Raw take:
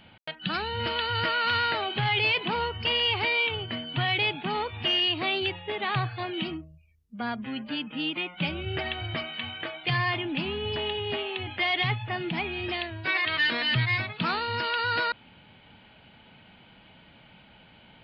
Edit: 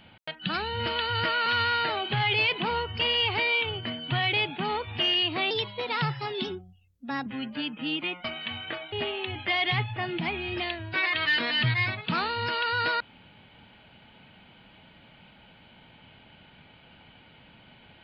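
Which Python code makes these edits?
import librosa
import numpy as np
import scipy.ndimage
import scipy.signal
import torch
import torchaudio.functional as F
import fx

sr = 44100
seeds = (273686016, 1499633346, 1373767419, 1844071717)

y = fx.edit(x, sr, fx.stretch_span(start_s=1.46, length_s=0.29, factor=1.5),
    fx.speed_span(start_s=5.36, length_s=2.04, speed=1.16),
    fx.cut(start_s=8.38, length_s=0.79),
    fx.cut(start_s=9.85, length_s=1.19), tone=tone)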